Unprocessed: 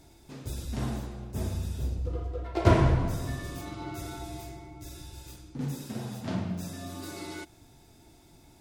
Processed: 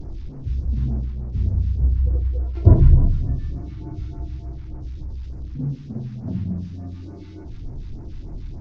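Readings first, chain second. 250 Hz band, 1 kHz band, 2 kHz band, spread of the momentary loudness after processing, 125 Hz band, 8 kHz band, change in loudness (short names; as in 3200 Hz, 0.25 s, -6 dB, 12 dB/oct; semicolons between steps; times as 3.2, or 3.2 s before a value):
+4.0 dB, -9.5 dB, under -10 dB, 21 LU, +10.5 dB, under -15 dB, +9.0 dB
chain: delta modulation 32 kbps, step -35.5 dBFS; tilt -4.5 dB/oct; phaser stages 2, 3.4 Hz, lowest notch 540–3200 Hz; gain -5.5 dB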